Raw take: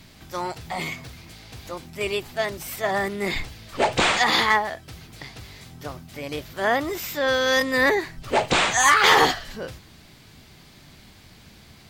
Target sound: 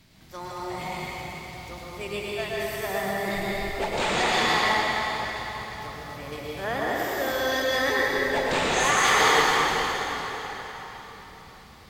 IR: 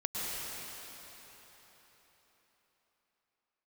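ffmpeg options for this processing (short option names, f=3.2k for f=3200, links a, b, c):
-filter_complex "[1:a]atrim=start_sample=2205[a];[0:a][a]afir=irnorm=-1:irlink=0,volume=-8dB"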